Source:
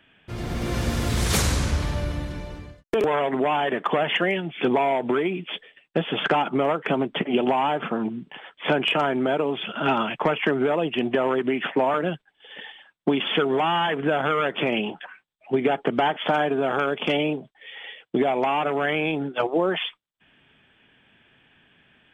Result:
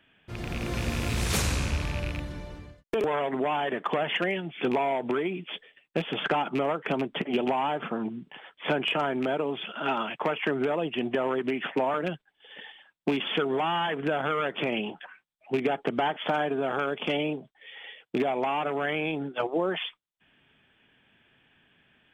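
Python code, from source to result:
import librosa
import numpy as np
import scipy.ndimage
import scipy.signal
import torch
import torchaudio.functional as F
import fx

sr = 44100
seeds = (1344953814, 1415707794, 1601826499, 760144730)

y = fx.rattle_buzz(x, sr, strikes_db=-25.0, level_db=-19.0)
y = fx.highpass(y, sr, hz=fx.line((9.65, 390.0), (10.47, 160.0)), slope=6, at=(9.65, 10.47), fade=0.02)
y = F.gain(torch.from_numpy(y), -5.0).numpy()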